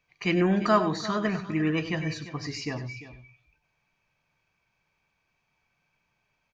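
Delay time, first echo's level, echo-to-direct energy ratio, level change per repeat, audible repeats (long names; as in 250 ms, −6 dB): 97 ms, −12.5 dB, −10.5 dB, repeats not evenly spaced, 3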